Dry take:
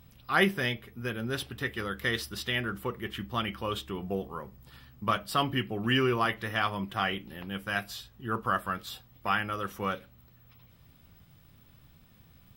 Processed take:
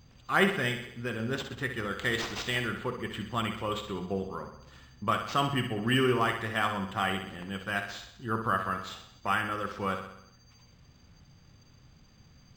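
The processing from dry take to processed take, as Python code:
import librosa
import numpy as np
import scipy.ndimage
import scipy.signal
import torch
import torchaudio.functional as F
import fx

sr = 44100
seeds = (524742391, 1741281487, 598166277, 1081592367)

p1 = fx.peak_eq(x, sr, hz=14000.0, db=13.5, octaves=0.86, at=(1.87, 2.69))
p2 = p1 + fx.echo_feedback(p1, sr, ms=63, feedback_pct=56, wet_db=-8.0, dry=0)
y = np.interp(np.arange(len(p2)), np.arange(len(p2))[::4], p2[::4])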